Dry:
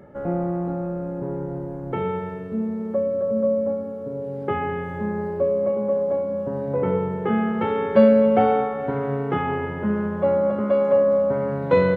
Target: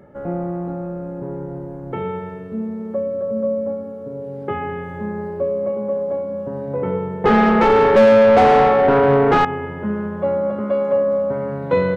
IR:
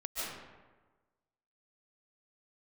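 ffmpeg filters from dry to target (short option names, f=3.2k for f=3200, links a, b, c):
-filter_complex "[0:a]asettb=1/sr,asplit=3[a][b][c];[a]atrim=end=7.244[d];[b]atrim=start=7.24:end=9.45,asetpts=PTS-STARTPTS,afade=t=in:d=0.004:c=qsin,afade=t=out:st=2.206:d=0.004:c=qsin,asplit=2[e][f];[f]highpass=f=720:p=1,volume=29dB,asoftclip=type=tanh:threshold=-3.5dB[g];[e][g]amix=inputs=2:normalize=0,lowpass=f=1.1k:p=1,volume=-6dB[h];[c]atrim=start=9.446[i];[d][h]acrossfade=d=0.004:c1=hsin:c2=qsin[j];[j][i]acrossfade=d=0.004:c1=qsin:c2=hsin"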